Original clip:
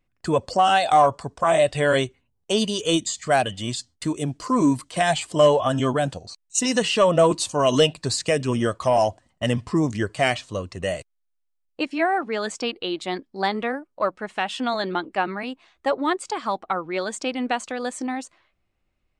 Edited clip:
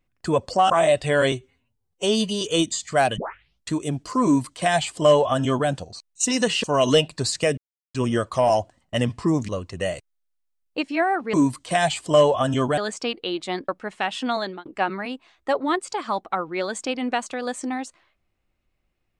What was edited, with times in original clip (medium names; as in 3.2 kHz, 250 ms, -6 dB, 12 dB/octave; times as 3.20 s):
0.70–1.41 s: delete
2.03–2.76 s: stretch 1.5×
3.52 s: tape start 0.54 s
4.59–6.03 s: copy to 12.36 s
6.98–7.49 s: delete
8.43 s: insert silence 0.37 s
9.97–10.51 s: delete
13.27–14.06 s: delete
14.75–15.03 s: fade out